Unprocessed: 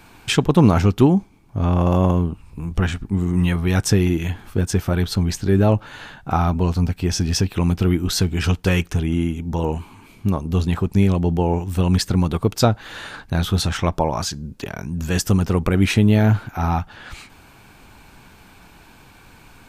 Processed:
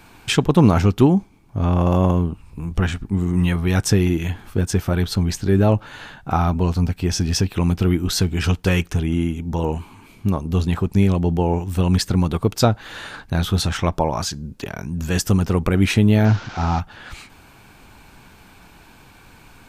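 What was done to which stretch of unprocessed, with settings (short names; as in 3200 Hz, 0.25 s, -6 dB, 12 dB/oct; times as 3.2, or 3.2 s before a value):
16.25–16.8 delta modulation 32 kbps, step -30 dBFS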